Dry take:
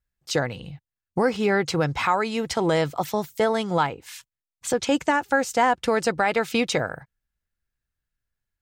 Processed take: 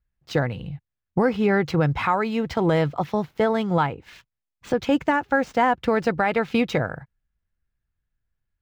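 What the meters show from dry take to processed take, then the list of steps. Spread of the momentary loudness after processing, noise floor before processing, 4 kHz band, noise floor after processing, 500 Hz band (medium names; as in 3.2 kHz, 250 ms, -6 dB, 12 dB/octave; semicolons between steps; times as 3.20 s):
9 LU, under -85 dBFS, -5.0 dB, -84 dBFS, +0.5 dB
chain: median filter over 5 samples; tone controls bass +6 dB, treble -10 dB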